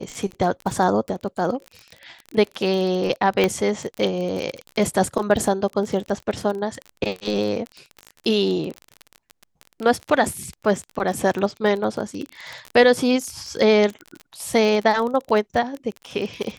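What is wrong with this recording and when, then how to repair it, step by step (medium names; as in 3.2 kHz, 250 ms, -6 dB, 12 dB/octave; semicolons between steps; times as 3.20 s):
crackle 28 per s -26 dBFS
3.44 s: pop -6 dBFS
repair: de-click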